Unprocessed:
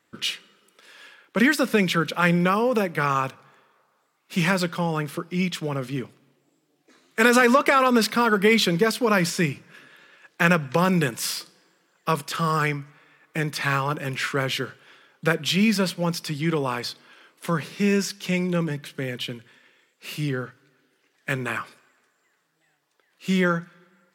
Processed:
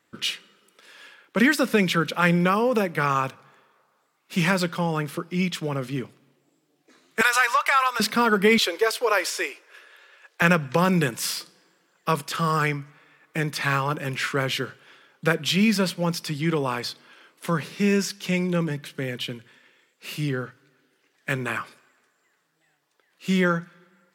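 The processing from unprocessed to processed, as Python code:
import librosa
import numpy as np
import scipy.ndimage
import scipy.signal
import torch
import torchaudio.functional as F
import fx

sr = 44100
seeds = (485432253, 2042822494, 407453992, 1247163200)

y = fx.highpass(x, sr, hz=810.0, slope=24, at=(7.21, 8.0))
y = fx.steep_highpass(y, sr, hz=390.0, slope=36, at=(8.58, 10.42))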